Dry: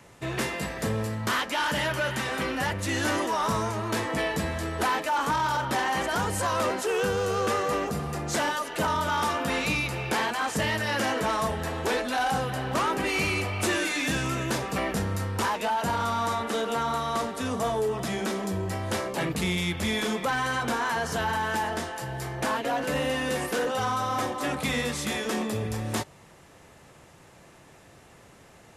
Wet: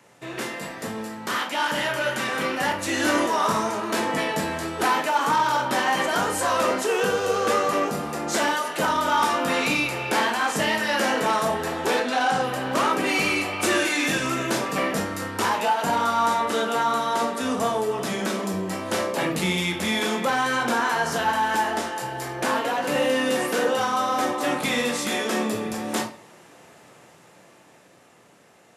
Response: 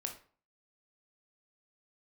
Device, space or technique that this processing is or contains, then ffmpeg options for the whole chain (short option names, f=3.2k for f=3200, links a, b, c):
far laptop microphone: -filter_complex "[0:a]asettb=1/sr,asplit=3[a][b][c];[a]atrim=end=12.004[d];[b]atrim=start=12:end=12.44,asetpts=PTS-STARTPTS,afade=t=in:d=0.004:c=qsin,afade=t=out:st=0.436:d=0.004:c=qsin,lowpass=8.1k[e];[c]atrim=start=12.436[f];[d][e]acrossfade=d=0.004:c1=hsin:c2=qsin[g];[g][f]acrossfade=d=0.004:c1=qsin:c2=hsin[h];[1:a]atrim=start_sample=2205[i];[h][i]afir=irnorm=-1:irlink=0,highpass=180,dynaudnorm=f=280:g=13:m=5.5dB"